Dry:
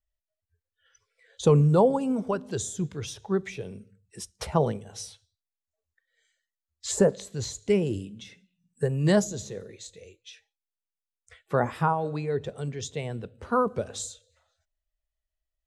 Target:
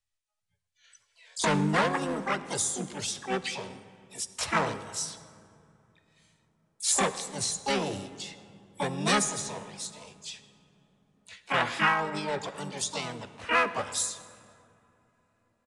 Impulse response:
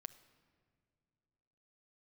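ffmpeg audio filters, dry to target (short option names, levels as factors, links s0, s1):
-filter_complex "[0:a]asplit=3[s0][s1][s2];[s1]asetrate=58866,aresample=44100,atempo=0.749154,volume=0.794[s3];[s2]asetrate=88200,aresample=44100,atempo=0.5,volume=0.631[s4];[s0][s3][s4]amix=inputs=3:normalize=0,acrossover=split=260|1300|5300[s5][s6][s7][s8];[s6]volume=11.9,asoftclip=hard,volume=0.0841[s9];[s5][s9][s7][s8]amix=inputs=4:normalize=0,tiltshelf=f=840:g=-7.5[s10];[1:a]atrim=start_sample=2205,asetrate=27783,aresample=44100[s11];[s10][s11]afir=irnorm=-1:irlink=0,aresample=22050,aresample=44100"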